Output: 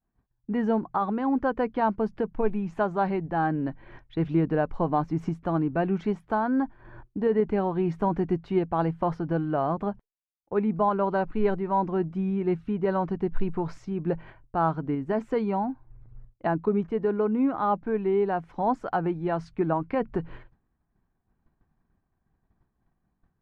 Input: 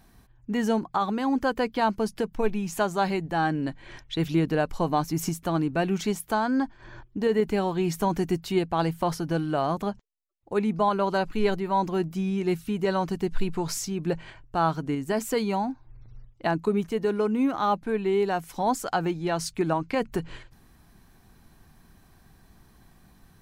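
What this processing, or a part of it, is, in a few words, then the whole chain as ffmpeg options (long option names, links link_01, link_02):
hearing-loss simulation: -af "lowpass=1500,agate=range=-33dB:threshold=-43dB:ratio=3:detection=peak"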